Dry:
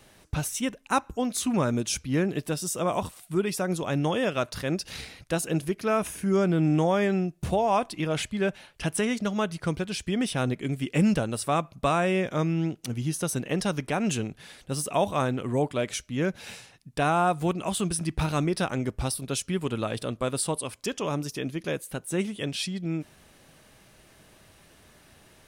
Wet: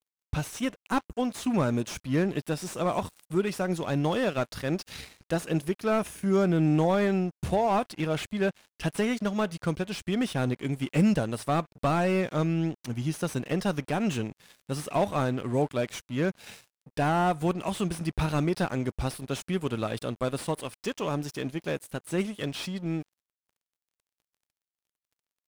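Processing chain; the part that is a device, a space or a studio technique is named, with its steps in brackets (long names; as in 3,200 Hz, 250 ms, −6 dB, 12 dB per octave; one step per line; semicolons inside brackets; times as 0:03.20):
early transistor amplifier (dead-zone distortion −46.5 dBFS; slew-rate limiting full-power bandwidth 79 Hz)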